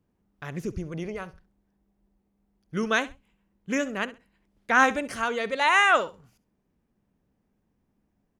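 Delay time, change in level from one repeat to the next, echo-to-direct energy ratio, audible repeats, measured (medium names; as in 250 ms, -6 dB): 66 ms, -13.5 dB, -17.5 dB, 2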